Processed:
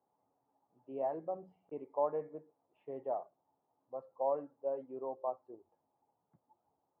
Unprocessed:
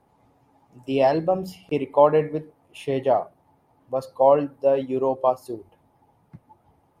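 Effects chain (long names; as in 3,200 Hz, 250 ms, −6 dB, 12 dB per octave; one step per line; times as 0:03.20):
Bessel low-pass filter 650 Hz, order 4
first difference
level +7 dB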